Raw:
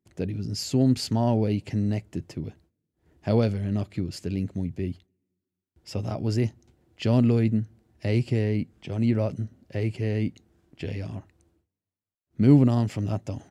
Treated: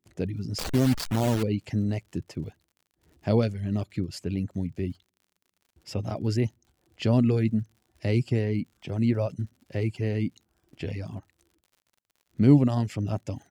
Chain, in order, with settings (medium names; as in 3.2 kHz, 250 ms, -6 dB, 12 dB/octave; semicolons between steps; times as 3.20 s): 0.58–1.43 s: send-on-delta sampling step -24 dBFS; reverb removal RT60 0.53 s; crackle 72 per s -49 dBFS